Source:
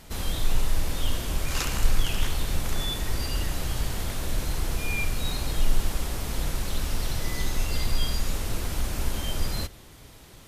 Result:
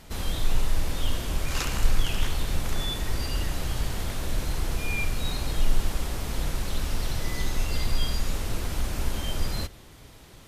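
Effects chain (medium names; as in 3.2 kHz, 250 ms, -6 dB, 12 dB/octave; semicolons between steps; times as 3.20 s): treble shelf 7 kHz -4 dB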